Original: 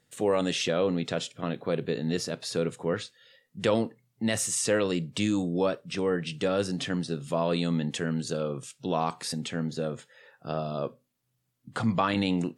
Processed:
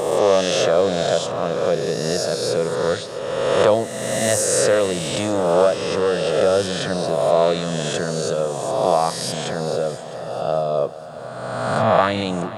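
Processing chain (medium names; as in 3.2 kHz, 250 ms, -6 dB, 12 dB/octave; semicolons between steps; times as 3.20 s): reverse spectral sustain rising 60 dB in 1.69 s; fifteen-band graphic EQ 250 Hz -8 dB, 630 Hz +8 dB, 2.5 kHz -5 dB; multi-head delay 219 ms, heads second and third, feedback 48%, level -17 dB; trim +4 dB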